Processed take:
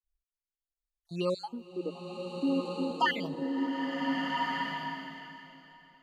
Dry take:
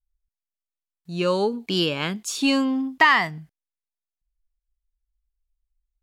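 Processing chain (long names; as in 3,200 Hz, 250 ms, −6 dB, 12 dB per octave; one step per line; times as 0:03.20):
time-frequency cells dropped at random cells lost 52%
0:01.67–0:02.91: elliptic band-pass filter 250–820 Hz
slow-attack reverb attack 1,510 ms, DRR −1 dB
level −7.5 dB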